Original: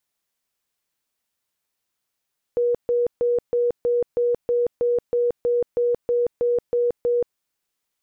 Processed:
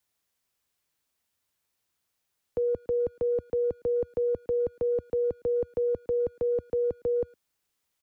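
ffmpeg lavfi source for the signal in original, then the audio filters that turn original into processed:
-f lavfi -i "aevalsrc='0.141*sin(2*PI*481*mod(t,0.32))*lt(mod(t,0.32),85/481)':d=4.8:s=44100"
-filter_complex "[0:a]equalizer=f=80:w=1.4:g=6.5,acrossover=split=100|330[a][b][c];[c]alimiter=level_in=2.5dB:limit=-24dB:level=0:latency=1:release=115,volume=-2.5dB[d];[a][b][d]amix=inputs=3:normalize=0,asplit=2[e][f];[f]adelay=110,highpass=300,lowpass=3.4k,asoftclip=type=hard:threshold=-29dB,volume=-24dB[g];[e][g]amix=inputs=2:normalize=0"

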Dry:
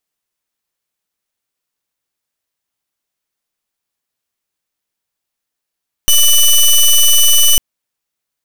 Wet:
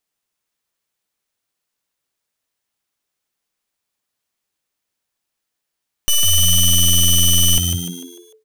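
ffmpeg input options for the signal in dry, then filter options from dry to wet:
-f lavfi -i "aevalsrc='0.422*(2*lt(mod(2980*t,1),0.14)-1)':d=1.5:s=44100"
-filter_complex "[0:a]equalizer=f=16k:t=o:w=0.48:g=-3.5,alimiter=limit=-12.5dB:level=0:latency=1,asplit=2[a][b];[b]asplit=5[c][d][e][f][g];[c]adelay=149,afreqshift=87,volume=-6dB[h];[d]adelay=298,afreqshift=174,volume=-13.1dB[i];[e]adelay=447,afreqshift=261,volume=-20.3dB[j];[f]adelay=596,afreqshift=348,volume=-27.4dB[k];[g]adelay=745,afreqshift=435,volume=-34.5dB[l];[h][i][j][k][l]amix=inputs=5:normalize=0[m];[a][m]amix=inputs=2:normalize=0"

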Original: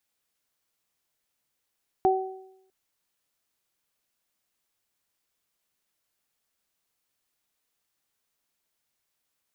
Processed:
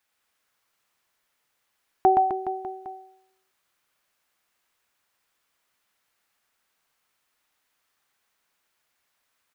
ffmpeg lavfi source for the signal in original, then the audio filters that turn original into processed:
-f lavfi -i "aevalsrc='0.112*pow(10,-3*t/0.83)*sin(2*PI*379*t)+0.126*pow(10,-3*t/0.66)*sin(2*PI*758*t)':d=0.65:s=44100"
-filter_complex "[0:a]equalizer=f=1.4k:w=0.52:g=9,asplit=2[a][b];[b]aecho=0:1:120|258|416.7|599.2|809.1:0.631|0.398|0.251|0.158|0.1[c];[a][c]amix=inputs=2:normalize=0"

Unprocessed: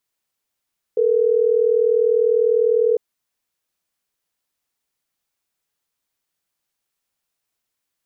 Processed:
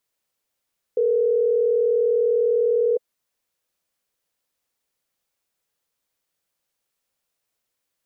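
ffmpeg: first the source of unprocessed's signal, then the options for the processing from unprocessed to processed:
-f lavfi -i "aevalsrc='0.15*(sin(2*PI*440*t)+sin(2*PI*480*t))*clip(min(mod(t,6),2-mod(t,6))/0.005,0,1)':d=3.12:s=44100"
-af "equalizer=f=520:w=3.4:g=6,alimiter=limit=-15dB:level=0:latency=1:release=11"

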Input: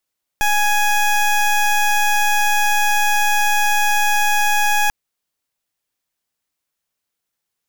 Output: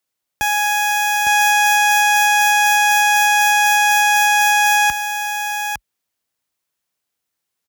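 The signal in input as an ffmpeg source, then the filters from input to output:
-f lavfi -i "aevalsrc='0.168*(2*lt(mod(832*t,1),0.19)-1)':d=4.49:s=44100"
-filter_complex "[0:a]highpass=f=46:w=0.5412,highpass=f=46:w=1.3066,asplit=2[a][b];[b]aecho=0:1:857:0.562[c];[a][c]amix=inputs=2:normalize=0"

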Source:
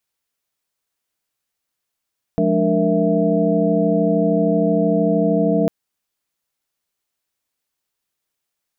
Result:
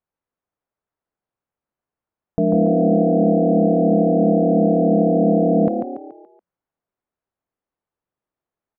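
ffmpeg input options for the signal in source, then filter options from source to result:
-f lavfi -i "aevalsrc='0.0944*(sin(2*PI*174.61*t)+sin(2*PI*207.65*t)+sin(2*PI*293.66*t)+sin(2*PI*466.16*t)+sin(2*PI*659.26*t))':d=3.3:s=44100"
-filter_complex "[0:a]lowpass=1.1k,asplit=6[a][b][c][d][e][f];[b]adelay=142,afreqshift=36,volume=-5.5dB[g];[c]adelay=284,afreqshift=72,volume=-13dB[h];[d]adelay=426,afreqshift=108,volume=-20.6dB[i];[e]adelay=568,afreqshift=144,volume=-28.1dB[j];[f]adelay=710,afreqshift=180,volume=-35.6dB[k];[a][g][h][i][j][k]amix=inputs=6:normalize=0"

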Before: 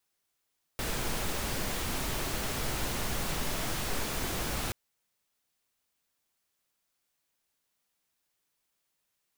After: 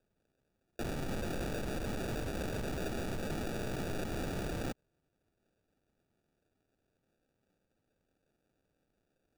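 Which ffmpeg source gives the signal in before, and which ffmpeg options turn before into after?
-f lavfi -i "anoisesrc=c=pink:a=0.122:d=3.93:r=44100:seed=1"
-filter_complex "[0:a]acrossover=split=110|2800[a][b][c];[a]alimiter=level_in=11dB:limit=-24dB:level=0:latency=1,volume=-11dB[d];[d][b][c]amix=inputs=3:normalize=0,acrusher=samples=42:mix=1:aa=0.000001,asoftclip=type=tanh:threshold=-31dB"

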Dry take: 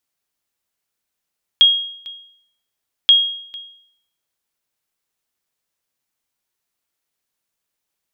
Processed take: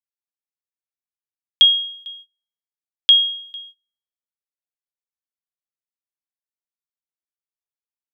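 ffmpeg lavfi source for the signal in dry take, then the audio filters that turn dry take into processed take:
-f lavfi -i "aevalsrc='0.631*(sin(2*PI*3270*mod(t,1.48))*exp(-6.91*mod(t,1.48)/0.66)+0.0841*sin(2*PI*3270*max(mod(t,1.48)-0.45,0))*exp(-6.91*max(mod(t,1.48)-0.45,0)/0.66))':d=2.96:s=44100"
-af "agate=range=-25dB:threshold=-41dB:ratio=16:detection=peak"

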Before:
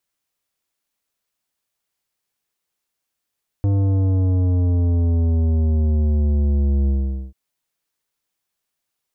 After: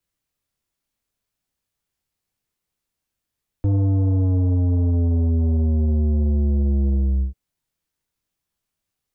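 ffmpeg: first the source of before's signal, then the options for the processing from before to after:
-f lavfi -i "aevalsrc='0.158*clip((3.69-t)/0.45,0,1)*tanh(3.76*sin(2*PI*100*3.69/log(65/100)*(exp(log(65/100)*t/3.69)-1)))/tanh(3.76)':d=3.69:s=44100"
-filter_complex "[0:a]lowshelf=f=160:g=11.5,acrossover=split=200|430[a][b][c];[a]alimiter=limit=-16.5dB:level=0:latency=1[d];[c]flanger=delay=16.5:depth=7.4:speed=1.4[e];[d][b][e]amix=inputs=3:normalize=0"

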